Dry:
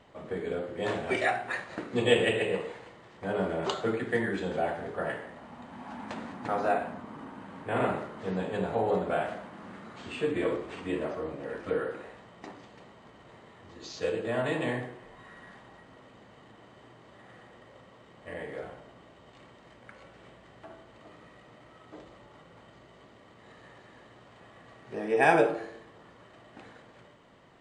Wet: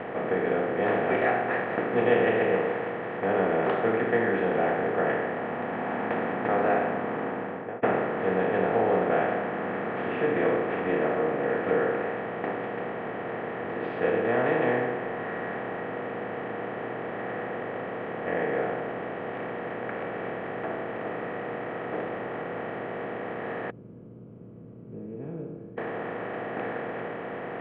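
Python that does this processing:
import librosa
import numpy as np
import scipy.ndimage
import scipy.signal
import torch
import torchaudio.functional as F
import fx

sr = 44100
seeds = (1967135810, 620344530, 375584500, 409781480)

y = fx.studio_fade_out(x, sr, start_s=7.12, length_s=0.71)
y = fx.cheby2_lowpass(y, sr, hz=700.0, order=4, stop_db=70, at=(23.7, 25.78))
y = fx.bin_compress(y, sr, power=0.4)
y = scipy.signal.sosfilt(scipy.signal.butter(4, 2100.0, 'lowpass', fs=sr, output='sos'), y)
y = fx.peak_eq(y, sr, hz=73.0, db=-10.0, octaves=0.9)
y = y * librosa.db_to_amplitude(-1.5)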